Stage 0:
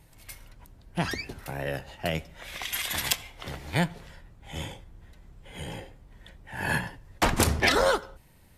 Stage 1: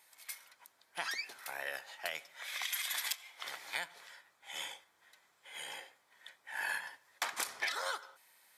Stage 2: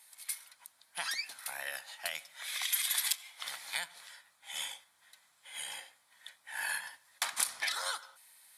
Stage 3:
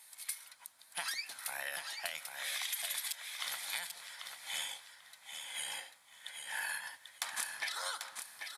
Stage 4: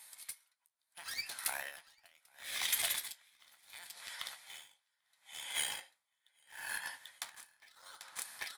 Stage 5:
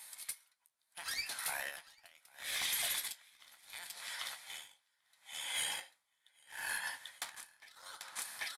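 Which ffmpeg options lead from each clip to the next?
-af "highpass=1100,bandreject=f=2800:w=9.4,acompressor=threshold=0.02:ratio=6"
-af "equalizer=f=400:t=o:w=0.67:g=-12,equalizer=f=4000:t=o:w=0.67:g=5,equalizer=f=10000:t=o:w=0.67:g=11"
-filter_complex "[0:a]acompressor=threshold=0.0141:ratio=10,asplit=2[s0][s1];[s1]aecho=0:1:791|1582|2373:0.473|0.0804|0.0137[s2];[s0][s2]amix=inputs=2:normalize=0,volume=1.26"
-filter_complex "[0:a]asplit=2[s0][s1];[s1]acrusher=bits=5:mix=0:aa=0.000001,volume=0.562[s2];[s0][s2]amix=inputs=2:normalize=0,flanger=delay=7.1:depth=8.2:regen=-61:speed=0.47:shape=triangular,aeval=exprs='val(0)*pow(10,-30*(0.5-0.5*cos(2*PI*0.72*n/s))/20)':c=same,volume=2.11"
-af "volume=56.2,asoftclip=hard,volume=0.0178,aresample=32000,aresample=44100,volume=1.5"

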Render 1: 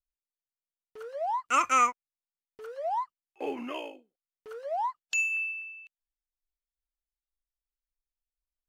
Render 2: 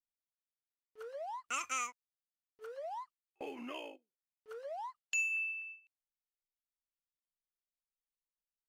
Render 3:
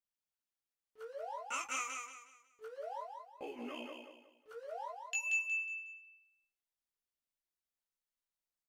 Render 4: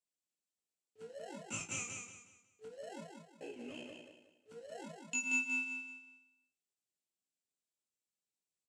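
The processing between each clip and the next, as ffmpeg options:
-filter_complex "[0:a]agate=range=0.2:threshold=0.00562:ratio=16:detection=peak,acrossover=split=2400[s0][s1];[s0]acompressor=threshold=0.0141:ratio=6[s2];[s2][s1]amix=inputs=2:normalize=0,volume=0.596"
-filter_complex "[0:a]flanger=delay=16.5:depth=2.2:speed=0.25,asplit=2[s0][s1];[s1]aecho=0:1:182|364|546|728:0.562|0.186|0.0612|0.0202[s2];[s0][s2]amix=inputs=2:normalize=0,volume=1.12"
-filter_complex "[0:a]acrossover=split=760|2300[s0][s1][s2];[s1]acrusher=samples=37:mix=1:aa=0.000001[s3];[s0][s3][s2]amix=inputs=3:normalize=0,highpass=f=100:w=0.5412,highpass=f=100:w=1.3066,equalizer=f=130:t=q:w=4:g=-7,equalizer=f=2500:t=q:w=4:g=4,equalizer=f=7600:t=q:w=4:g=8,lowpass=f=9900:w=0.5412,lowpass=f=9900:w=1.3066,asplit=2[s4][s5];[s5]adelay=36,volume=0.316[s6];[s4][s6]amix=inputs=2:normalize=0,volume=0.794"

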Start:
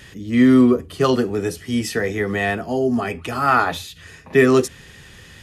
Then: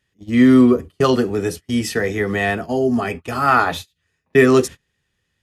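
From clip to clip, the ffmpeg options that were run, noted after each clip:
-af "agate=range=0.0316:threshold=0.0355:ratio=16:detection=peak,volume=1.19"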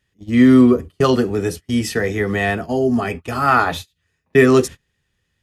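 -af "lowshelf=f=110:g=5"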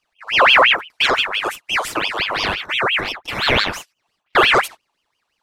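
-af "aeval=exprs='val(0)*sin(2*PI*1900*n/s+1900*0.6/5.8*sin(2*PI*5.8*n/s))':c=same,volume=1.12"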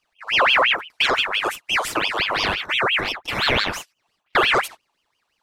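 -af "acompressor=threshold=0.141:ratio=2"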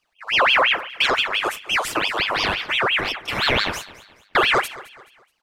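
-af "aecho=1:1:213|426|639:0.112|0.0415|0.0154"

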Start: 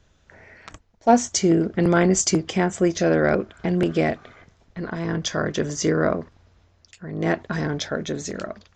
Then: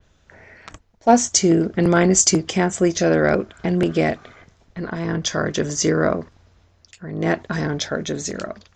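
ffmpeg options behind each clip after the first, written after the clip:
-af "adynamicequalizer=threshold=0.0112:dfrequency=7400:dqfactor=0.71:tfrequency=7400:tqfactor=0.71:attack=5:release=100:ratio=0.375:range=2.5:mode=boostabove:tftype=bell,volume=1.26"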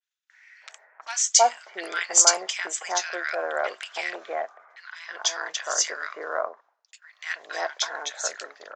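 -filter_complex "[0:a]agate=range=0.0224:threshold=0.00708:ratio=3:detection=peak,highpass=f=730:w=0.5412,highpass=f=730:w=1.3066,acrossover=split=1500[s0][s1];[s0]adelay=320[s2];[s2][s1]amix=inputs=2:normalize=0"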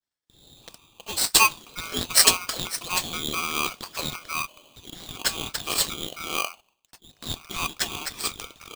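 -af "aeval=exprs='val(0)*sgn(sin(2*PI*1800*n/s))':c=same"

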